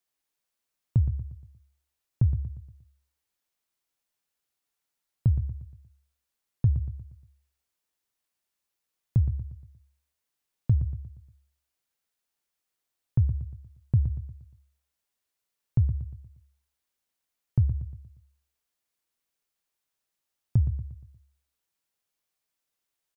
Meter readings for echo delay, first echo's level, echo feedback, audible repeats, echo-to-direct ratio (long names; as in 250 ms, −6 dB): 118 ms, −10.5 dB, 44%, 4, −9.5 dB